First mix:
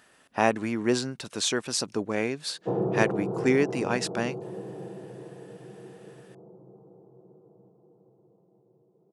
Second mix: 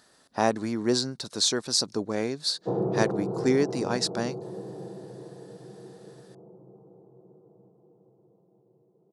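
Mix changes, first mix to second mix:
speech: add resonant high shelf 3400 Hz +7 dB, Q 3; master: add high shelf 2800 Hz -7.5 dB

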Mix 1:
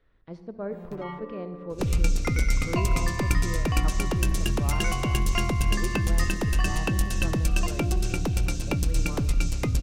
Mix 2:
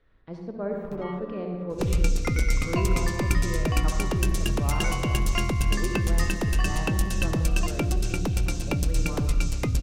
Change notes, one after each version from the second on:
speech: send +10.0 dB; first sound: send off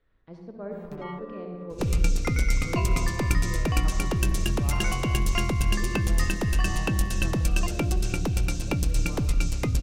speech -6.0 dB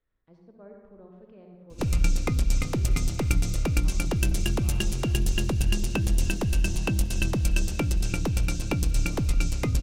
speech -11.0 dB; first sound: muted

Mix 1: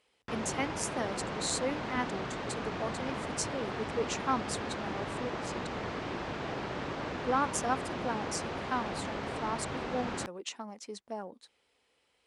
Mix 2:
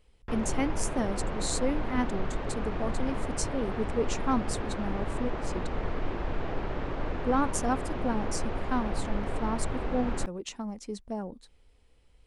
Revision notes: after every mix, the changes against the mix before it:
background: add tone controls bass -14 dB, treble -11 dB; master: remove weighting filter A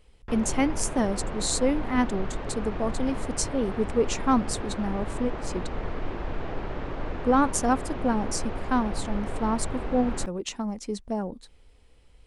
speech +5.5 dB

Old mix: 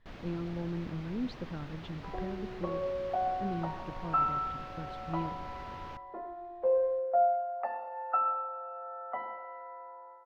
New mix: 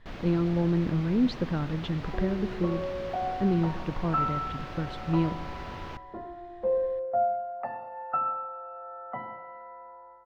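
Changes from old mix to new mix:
speech +11.0 dB; first sound +6.5 dB; second sound: remove Chebyshev high-pass 490 Hz, order 2

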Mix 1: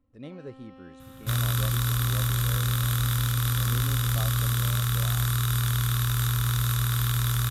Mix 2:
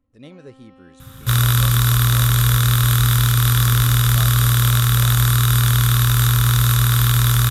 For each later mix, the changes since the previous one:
speech: add high shelf 3200 Hz +11 dB; second sound +10.0 dB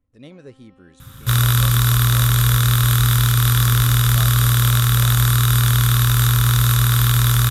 first sound -6.5 dB

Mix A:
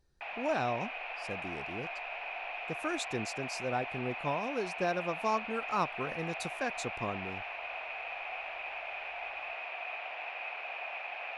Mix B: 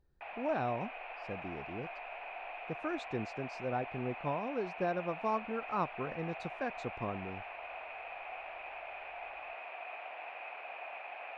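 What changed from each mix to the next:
master: add tape spacing loss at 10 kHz 29 dB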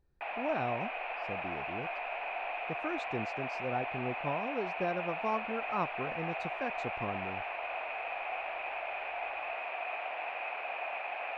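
background +7.0 dB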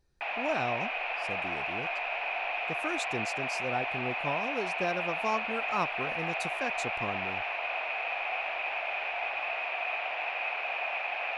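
master: remove tape spacing loss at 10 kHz 29 dB

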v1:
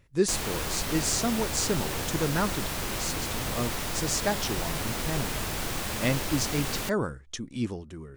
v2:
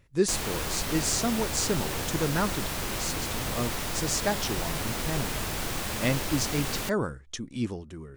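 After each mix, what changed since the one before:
none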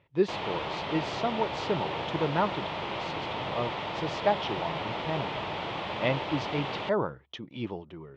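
master: add speaker cabinet 140–3300 Hz, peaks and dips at 240 Hz -8 dB, 620 Hz +4 dB, 900 Hz +7 dB, 1600 Hz -6 dB, 3300 Hz +4 dB

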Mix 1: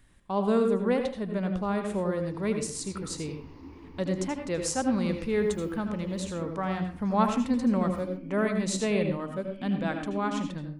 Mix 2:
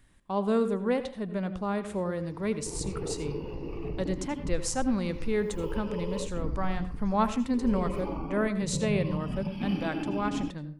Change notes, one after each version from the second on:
speech: send -7.0 dB; second sound: remove vowel filter i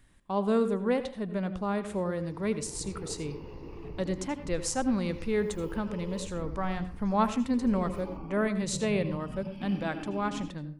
second sound -7.0 dB

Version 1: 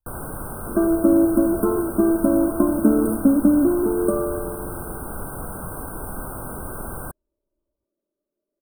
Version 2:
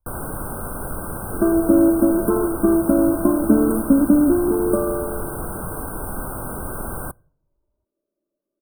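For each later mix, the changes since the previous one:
speech +8.5 dB; second sound: entry +0.65 s; reverb: on, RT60 0.65 s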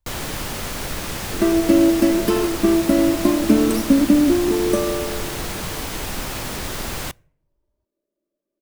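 master: remove brick-wall FIR band-stop 1600–8300 Hz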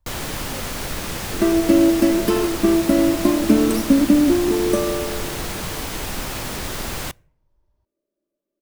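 speech +7.5 dB

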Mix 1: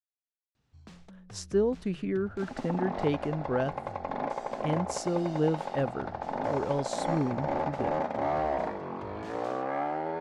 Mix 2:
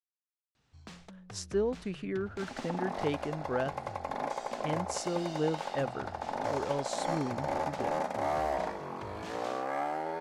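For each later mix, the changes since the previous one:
first sound +6.0 dB; second sound: remove LPF 3600 Hz 12 dB/oct; master: add low shelf 450 Hz -7 dB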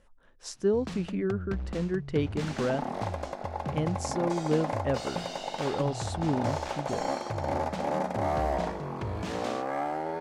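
speech: entry -0.90 s; first sound +6.0 dB; master: add low shelf 450 Hz +7 dB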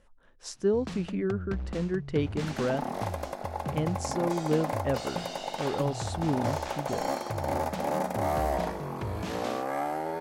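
second sound: remove air absorption 71 m

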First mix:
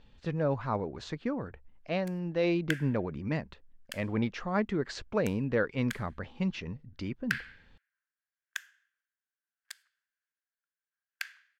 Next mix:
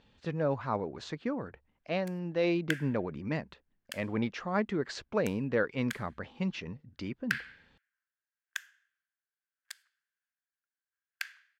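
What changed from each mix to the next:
master: add HPF 140 Hz 6 dB/oct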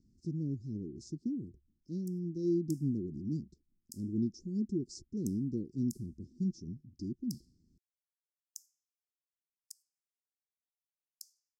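master: add Chebyshev band-stop 360–5200 Hz, order 5

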